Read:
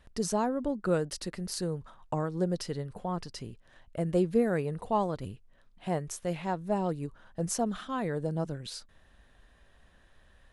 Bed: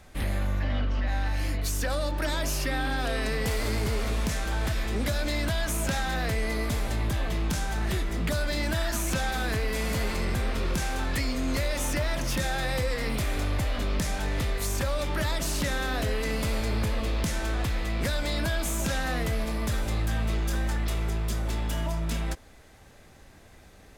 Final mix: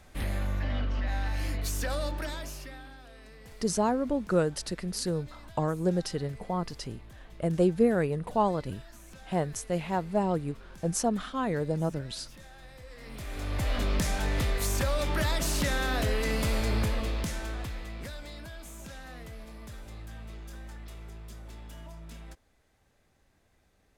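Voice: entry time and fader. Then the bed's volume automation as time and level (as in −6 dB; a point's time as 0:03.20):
3.45 s, +2.5 dB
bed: 0:02.07 −3 dB
0:03.05 −22.5 dB
0:12.78 −22.5 dB
0:13.71 0 dB
0:16.79 0 dB
0:18.45 −16 dB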